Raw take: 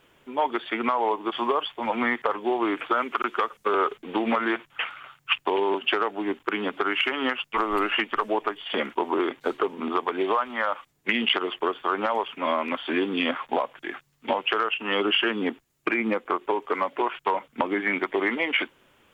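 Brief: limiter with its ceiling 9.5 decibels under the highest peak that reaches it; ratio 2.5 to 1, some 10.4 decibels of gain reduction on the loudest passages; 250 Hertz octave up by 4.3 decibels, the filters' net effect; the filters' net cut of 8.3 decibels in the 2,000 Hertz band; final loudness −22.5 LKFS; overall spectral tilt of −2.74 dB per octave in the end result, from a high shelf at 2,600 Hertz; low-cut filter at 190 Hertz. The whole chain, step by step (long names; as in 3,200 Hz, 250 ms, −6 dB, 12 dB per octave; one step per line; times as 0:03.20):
high-pass filter 190 Hz
parametric band 250 Hz +7 dB
parametric band 2,000 Hz −7 dB
high-shelf EQ 2,600 Hz −8 dB
downward compressor 2.5 to 1, threshold −35 dBFS
level +15 dB
brickwall limiter −12 dBFS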